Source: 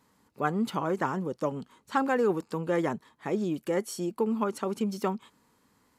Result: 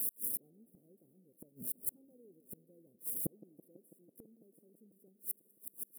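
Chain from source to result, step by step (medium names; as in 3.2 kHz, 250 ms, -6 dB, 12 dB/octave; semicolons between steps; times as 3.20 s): zero-crossing glitches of -21.5 dBFS; inverse Chebyshev band-stop 910–6200 Hz, stop band 40 dB; treble shelf 7.5 kHz -6.5 dB; inverted gate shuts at -25 dBFS, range -38 dB; feedback echo behind a band-pass 165 ms, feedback 83%, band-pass 400 Hz, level -16 dB; trim +3.5 dB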